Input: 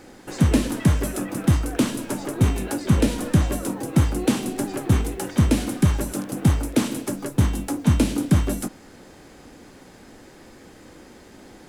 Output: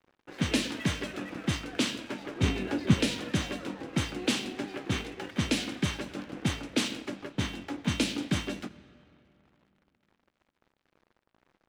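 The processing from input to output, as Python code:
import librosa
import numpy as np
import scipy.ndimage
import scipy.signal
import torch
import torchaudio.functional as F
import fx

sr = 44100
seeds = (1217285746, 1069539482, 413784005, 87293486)

y = fx.weighting(x, sr, curve='D')
y = fx.env_lowpass(y, sr, base_hz=1100.0, full_db=-13.5)
y = fx.low_shelf(y, sr, hz=480.0, db=8.5, at=(2.43, 2.94))
y = np.sign(y) * np.maximum(np.abs(y) - 10.0 ** (-42.5 / 20.0), 0.0)
y = fx.rev_freeverb(y, sr, rt60_s=3.0, hf_ratio=0.7, predelay_ms=20, drr_db=18.0)
y = y * librosa.db_to_amplitude(-7.5)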